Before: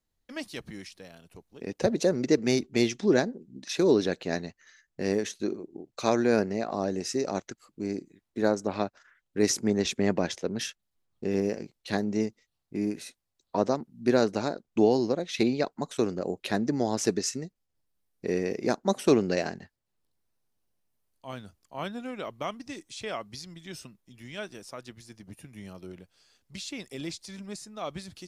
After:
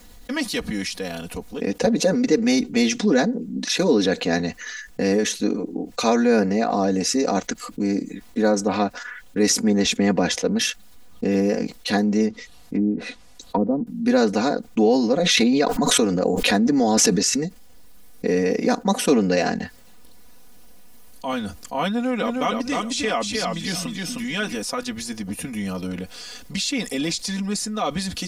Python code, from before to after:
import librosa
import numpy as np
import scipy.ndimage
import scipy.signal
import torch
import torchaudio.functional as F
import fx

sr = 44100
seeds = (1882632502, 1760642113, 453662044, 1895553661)

y = fx.env_lowpass_down(x, sr, base_hz=370.0, full_db=-26.5, at=(12.26, 13.87))
y = fx.pre_swell(y, sr, db_per_s=31.0, at=(15.11, 17.4))
y = fx.echo_feedback(y, sr, ms=309, feedback_pct=16, wet_db=-5, at=(21.9, 24.55))
y = y + 0.94 * np.pad(y, (int(4.1 * sr / 1000.0), 0))[:len(y)]
y = fx.env_flatten(y, sr, amount_pct=50)